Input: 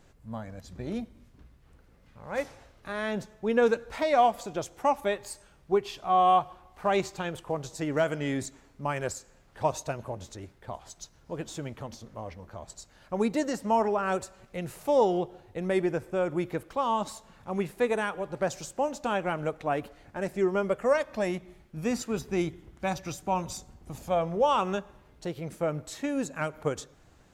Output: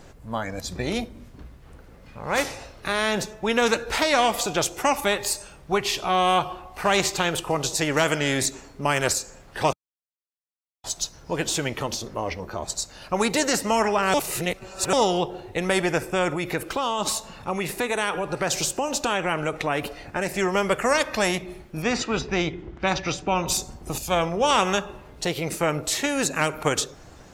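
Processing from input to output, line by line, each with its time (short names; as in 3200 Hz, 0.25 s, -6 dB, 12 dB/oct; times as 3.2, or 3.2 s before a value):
9.73–10.84 mute
14.14–14.93 reverse
16.34–20.37 compressor 2:1, threshold -34 dBFS
21.82–23.48 air absorption 160 m
23.98–24.51 three-band expander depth 40%
whole clip: spectral noise reduction 8 dB; bell 600 Hz +3 dB 2 oct; spectral compressor 2:1; gain +2.5 dB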